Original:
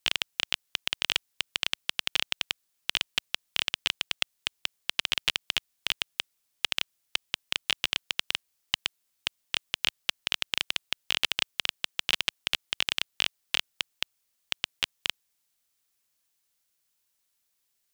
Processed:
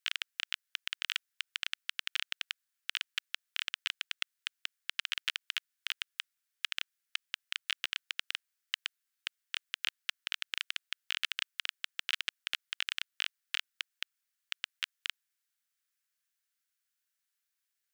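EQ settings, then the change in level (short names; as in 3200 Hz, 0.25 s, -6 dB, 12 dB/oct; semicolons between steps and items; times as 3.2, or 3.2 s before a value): ladder high-pass 1300 Hz, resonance 50%; 0.0 dB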